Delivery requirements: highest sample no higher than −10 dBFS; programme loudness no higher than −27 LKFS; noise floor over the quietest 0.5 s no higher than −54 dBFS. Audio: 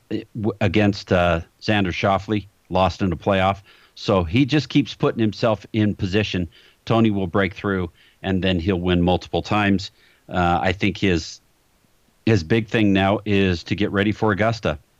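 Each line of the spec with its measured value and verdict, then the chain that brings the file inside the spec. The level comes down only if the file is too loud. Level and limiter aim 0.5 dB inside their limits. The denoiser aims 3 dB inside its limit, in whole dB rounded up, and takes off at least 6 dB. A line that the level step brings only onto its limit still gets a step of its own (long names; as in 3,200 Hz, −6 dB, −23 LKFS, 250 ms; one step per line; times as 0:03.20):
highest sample −6.0 dBFS: out of spec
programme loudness −21.0 LKFS: out of spec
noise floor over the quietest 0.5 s −60 dBFS: in spec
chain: level −6.5 dB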